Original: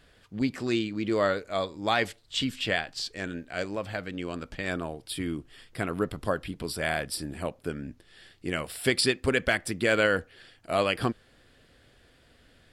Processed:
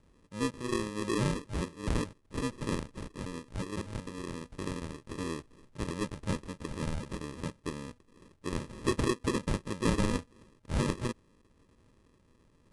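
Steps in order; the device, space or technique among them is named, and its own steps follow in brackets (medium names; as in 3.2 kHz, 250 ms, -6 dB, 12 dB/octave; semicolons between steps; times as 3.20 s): crushed at another speed (playback speed 2×; sample-and-hold 30×; playback speed 0.5×); trim -4.5 dB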